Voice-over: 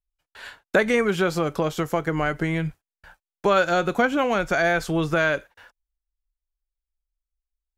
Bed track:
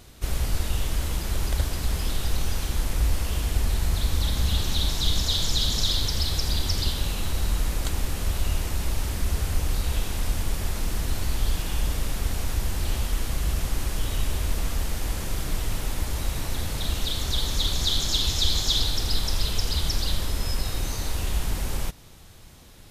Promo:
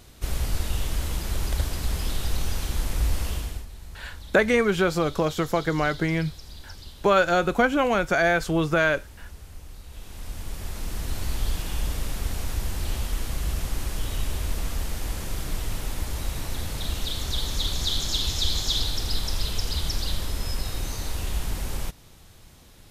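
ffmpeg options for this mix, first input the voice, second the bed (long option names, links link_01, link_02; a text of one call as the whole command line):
ffmpeg -i stem1.wav -i stem2.wav -filter_complex "[0:a]adelay=3600,volume=0dB[link_01];[1:a]volume=14.5dB,afade=type=out:start_time=3.27:duration=0.39:silence=0.149624,afade=type=in:start_time=9.89:duration=1.4:silence=0.16788[link_02];[link_01][link_02]amix=inputs=2:normalize=0" out.wav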